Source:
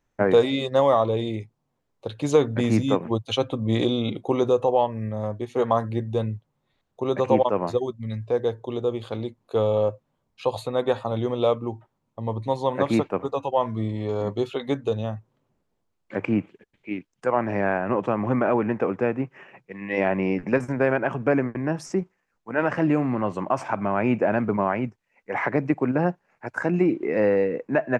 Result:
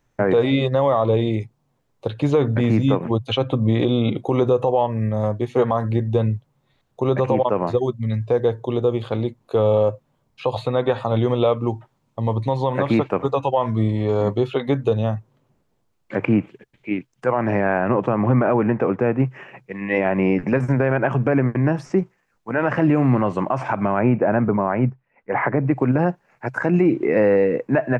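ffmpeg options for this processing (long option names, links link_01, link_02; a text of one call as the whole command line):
ffmpeg -i in.wav -filter_complex "[0:a]asettb=1/sr,asplit=3[link_01][link_02][link_03];[link_01]atrim=end=10.524[link_04];[link_02]atrim=start=10.52:end=13.7,asetpts=PTS-STARTPTS,afade=type=in:duration=0.004:curve=qsin,afade=type=out:start_time=3.176:duration=0.004:curve=qsin,equalizer=frequency=4100:width_type=o:width=2.8:gain=3.5[link_05];[link_03]atrim=start=13.696[link_06];[link_04][link_05]acrossfade=duration=0.004:curve1=hsin:curve2=qsin[link_07];[link_07][link_06]acrossfade=duration=0.004:curve1=qsin:curve2=hsin,asettb=1/sr,asplit=3[link_08][link_09][link_10];[link_08]atrim=end=17.884[link_11];[link_09]atrim=start=17.88:end=19.2,asetpts=PTS-STARTPTS,afade=type=in:duration=0.004:curve=qsin,afade=type=out:start_time=1.316:duration=0.004:curve=qsin,highshelf=frequency=4100:gain=-10.5[link_12];[link_10]atrim=start=19.196[link_13];[link_11][link_12]acrossfade=duration=0.004:curve1=hsin:curve2=qsin[link_14];[link_14][link_13]acrossfade=duration=0.004:curve1=qsin:curve2=hsin,asettb=1/sr,asplit=3[link_15][link_16][link_17];[link_15]atrim=end=23.994[link_18];[link_16]atrim=start=23.99:end=25.71,asetpts=PTS-STARTPTS,afade=type=in:duration=0.004:curve=qsin,afade=type=out:start_time=1.716:duration=0.004:curve=qsin,lowpass=1800[link_19];[link_17]atrim=start=25.706[link_20];[link_18][link_19]acrossfade=duration=0.004:curve1=hsin:curve2=qsin[link_21];[link_21][link_20]acrossfade=duration=0.004:curve1=qsin:curve2=hsin,acrossover=split=3500[link_22][link_23];[link_23]acompressor=threshold=-58dB:ratio=4:attack=1:release=60[link_24];[link_22][link_24]amix=inputs=2:normalize=0,equalizer=frequency=130:width=5.8:gain=8,alimiter=limit=-15dB:level=0:latency=1:release=90,volume=6.5dB" out.wav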